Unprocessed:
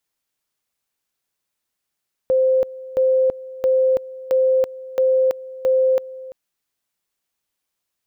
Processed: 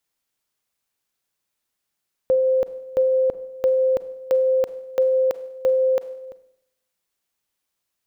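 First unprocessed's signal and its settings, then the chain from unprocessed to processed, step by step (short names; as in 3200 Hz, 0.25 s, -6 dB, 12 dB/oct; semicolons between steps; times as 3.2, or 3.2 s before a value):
two-level tone 521 Hz -13 dBFS, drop 18.5 dB, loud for 0.33 s, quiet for 0.34 s, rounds 6
Schroeder reverb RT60 0.78 s, combs from 33 ms, DRR 14 dB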